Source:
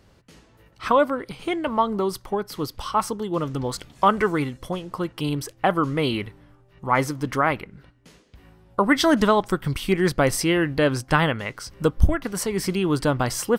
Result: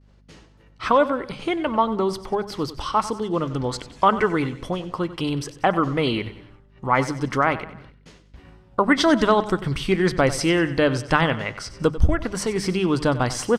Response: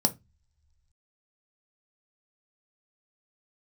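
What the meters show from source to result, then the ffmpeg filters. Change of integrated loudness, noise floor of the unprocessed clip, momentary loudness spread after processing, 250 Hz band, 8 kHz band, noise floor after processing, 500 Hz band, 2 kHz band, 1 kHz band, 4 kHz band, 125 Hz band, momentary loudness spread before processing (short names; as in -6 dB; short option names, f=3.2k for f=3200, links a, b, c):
+1.0 dB, -56 dBFS, 10 LU, +1.0 dB, -2.0 dB, -53 dBFS, +1.0 dB, +1.0 dB, +1.0 dB, +1.0 dB, +0.5 dB, 11 LU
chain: -filter_complex "[0:a]lowpass=7k,bandreject=f=50:t=h:w=6,bandreject=f=100:t=h:w=6,bandreject=f=150:t=h:w=6,bandreject=f=200:t=h:w=6,agate=range=-33dB:threshold=-48dB:ratio=3:detection=peak,asplit=2[a][b];[b]acompressor=threshold=-34dB:ratio=6,volume=-3dB[c];[a][c]amix=inputs=2:normalize=0,aeval=exprs='val(0)+0.00224*(sin(2*PI*50*n/s)+sin(2*PI*2*50*n/s)/2+sin(2*PI*3*50*n/s)/3+sin(2*PI*4*50*n/s)/4+sin(2*PI*5*50*n/s)/5)':c=same,aecho=1:1:94|188|282|376:0.178|0.0782|0.0344|0.0151"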